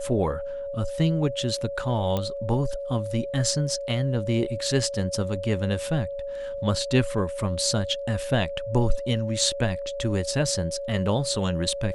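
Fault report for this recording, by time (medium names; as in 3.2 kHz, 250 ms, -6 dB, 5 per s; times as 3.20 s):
whine 560 Hz -30 dBFS
2.17 s: pop -14 dBFS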